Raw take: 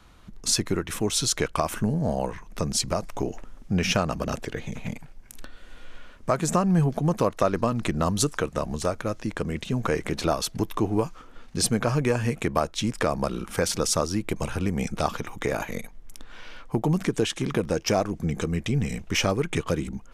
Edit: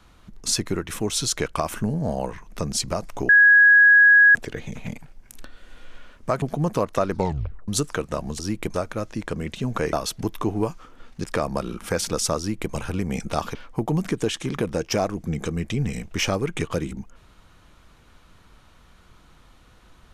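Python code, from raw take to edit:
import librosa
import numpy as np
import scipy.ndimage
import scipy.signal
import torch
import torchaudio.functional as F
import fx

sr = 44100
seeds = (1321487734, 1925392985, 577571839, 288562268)

y = fx.edit(x, sr, fx.bleep(start_s=3.29, length_s=1.06, hz=1660.0, db=-9.5),
    fx.cut(start_s=6.42, length_s=0.44),
    fx.tape_stop(start_s=7.56, length_s=0.56),
    fx.cut(start_s=10.02, length_s=0.27),
    fx.cut(start_s=11.6, length_s=1.31),
    fx.duplicate(start_s=14.05, length_s=0.35, to_s=8.83),
    fx.cut(start_s=15.22, length_s=1.29), tone=tone)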